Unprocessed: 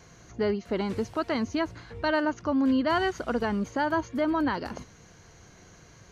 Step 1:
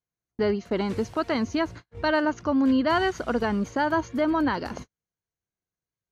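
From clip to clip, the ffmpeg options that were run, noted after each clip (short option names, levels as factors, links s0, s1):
-af "agate=range=0.00631:threshold=0.01:ratio=16:detection=peak,volume=1.33"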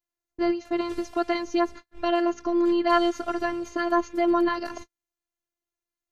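-af "afftfilt=real='hypot(re,im)*cos(PI*b)':imag='0':win_size=512:overlap=0.75,volume=1.5"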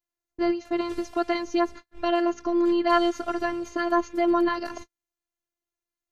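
-af anull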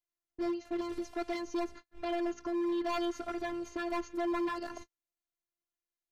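-af "asoftclip=type=hard:threshold=0.075,volume=0.447"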